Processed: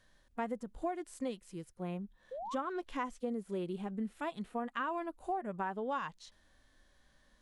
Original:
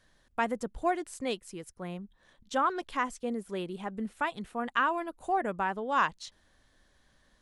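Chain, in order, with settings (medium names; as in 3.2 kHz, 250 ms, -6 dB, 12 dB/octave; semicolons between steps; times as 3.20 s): harmonic-percussive split percussive -13 dB; compression 5:1, threshold -35 dBFS, peak gain reduction 11 dB; painted sound rise, 2.31–2.55 s, 480–1200 Hz -43 dBFS; trim +1.5 dB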